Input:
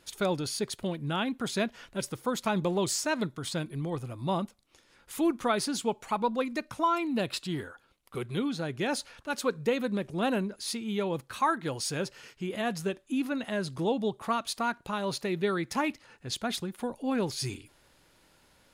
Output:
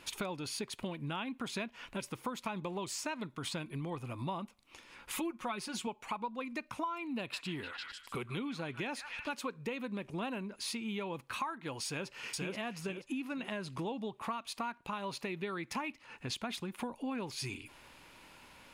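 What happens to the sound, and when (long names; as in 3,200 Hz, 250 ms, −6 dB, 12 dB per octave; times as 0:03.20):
0:05.13–0:05.87: comb filter 5.5 ms, depth 70%
0:07.06–0:09.29: echo through a band-pass that steps 150 ms, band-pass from 1,500 Hz, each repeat 0.7 octaves, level −7.5 dB
0:11.85–0:12.53: delay throw 480 ms, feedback 30%, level −4 dB
whole clip: graphic EQ with 15 bands 250 Hz +4 dB, 1,000 Hz +8 dB, 2,500 Hz +10 dB; downward compressor 6 to 1, threshold −39 dBFS; level +2 dB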